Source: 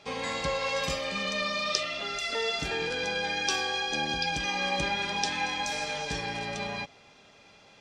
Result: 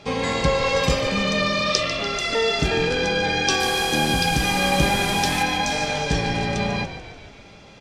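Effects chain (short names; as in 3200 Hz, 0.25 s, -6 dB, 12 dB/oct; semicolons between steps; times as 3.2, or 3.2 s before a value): 3.6–5.43 delta modulation 64 kbps, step -28.5 dBFS; low shelf 370 Hz +10 dB; on a send: frequency-shifting echo 0.146 s, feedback 57%, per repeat -41 Hz, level -11 dB; on the sum: gain +6.5 dB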